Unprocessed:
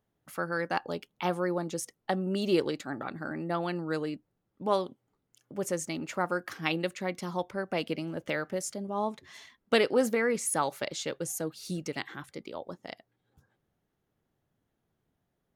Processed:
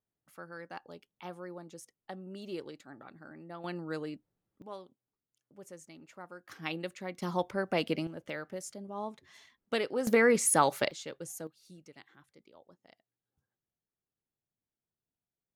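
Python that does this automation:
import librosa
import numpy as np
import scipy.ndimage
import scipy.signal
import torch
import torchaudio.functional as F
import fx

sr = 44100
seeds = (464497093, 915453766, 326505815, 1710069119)

y = fx.gain(x, sr, db=fx.steps((0.0, -14.0), (3.64, -5.5), (4.62, -17.5), (6.49, -7.0), (7.22, 1.0), (8.07, -7.5), (10.07, 4.0), (10.91, -8.0), (11.47, -18.5)))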